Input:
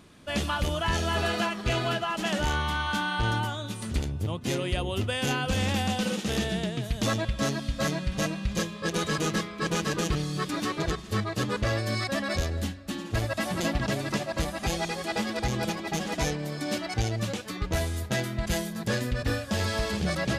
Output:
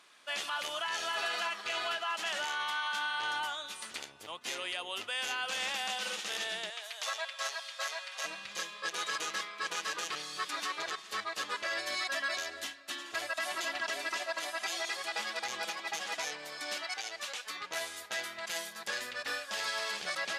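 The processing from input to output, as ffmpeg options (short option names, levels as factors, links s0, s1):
-filter_complex "[0:a]asettb=1/sr,asplit=3[s0][s1][s2];[s0]atrim=end=6.704[s3];[s1]atrim=start=6.7:end=8.24,asetpts=PTS-STARTPTS,afade=t=in:d=0.004:c=qsin,afade=t=out:st=1.536:d=0.004:c=qsin,highpass=f=530:w=0.5412,highpass=f=530:w=1.3066[s4];[s2]atrim=start=8.236[s5];[s3][s4]acrossfade=d=0.004:c1=hsin:c2=qsin[s6];[s6][s5]acrossfade=d=0.004:c1=qsin:c2=hsin,asettb=1/sr,asplit=3[s7][s8][s9];[s7]atrim=end=11.544[s10];[s8]atrim=start=11.54:end=14.97,asetpts=PTS-STARTPTS,afade=t=in:d=0.004:c=qsin,afade=t=out:st=3.426:d=0.004:c=qsin,aecho=1:1:3:0.65,atrim=end_sample=151263[s11];[s9]atrim=start=14.966[s12];[s10][s11]acrossfade=d=0.004:c1=hsin:c2=qsin[s13];[s13][s12]acrossfade=d=0.004:c1=qsin:c2=hsin,asettb=1/sr,asplit=3[s14][s15][s16];[s14]atrim=end=16.844[s17];[s15]atrim=start=16.84:end=17.47,asetpts=PTS-STARTPTS,afade=t=in:d=0.004:c=qsin,afade=t=out:st=0.626:d=0.004:c=qsin,highpass=f=600:p=1[s18];[s16]atrim=start=17.466[s19];[s17][s18]acrossfade=d=0.004:c1=hsin:c2=qsin[s20];[s20][s19]acrossfade=d=0.004:c1=qsin:c2=hsin,highpass=1000,highshelf=f=12000:g=-9.5,alimiter=level_in=1.12:limit=0.0631:level=0:latency=1:release=44,volume=0.891"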